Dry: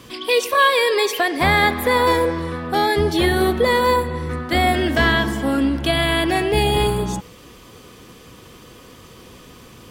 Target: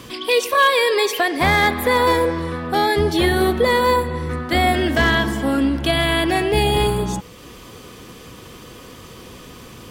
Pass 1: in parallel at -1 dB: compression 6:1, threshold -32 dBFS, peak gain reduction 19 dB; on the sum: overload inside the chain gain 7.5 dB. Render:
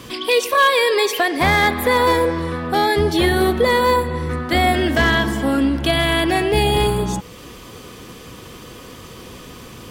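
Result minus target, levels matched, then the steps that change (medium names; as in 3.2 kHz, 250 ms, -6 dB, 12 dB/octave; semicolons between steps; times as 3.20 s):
compression: peak gain reduction -10 dB
change: compression 6:1, threshold -44 dBFS, peak gain reduction 29 dB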